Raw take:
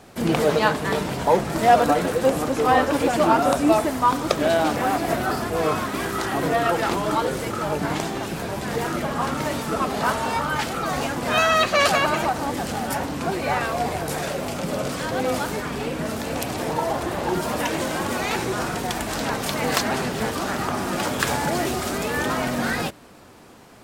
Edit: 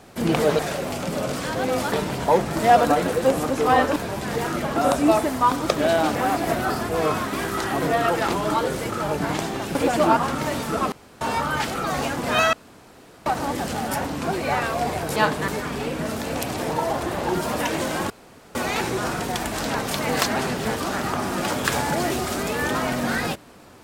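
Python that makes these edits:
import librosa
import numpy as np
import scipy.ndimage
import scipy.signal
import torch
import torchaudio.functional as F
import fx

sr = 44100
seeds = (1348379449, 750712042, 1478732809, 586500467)

y = fx.edit(x, sr, fx.swap(start_s=0.59, length_s=0.32, other_s=14.15, other_length_s=1.33),
    fx.swap(start_s=2.95, length_s=0.42, other_s=8.36, other_length_s=0.8),
    fx.room_tone_fill(start_s=9.91, length_s=0.29),
    fx.room_tone_fill(start_s=11.52, length_s=0.73),
    fx.insert_room_tone(at_s=18.1, length_s=0.45), tone=tone)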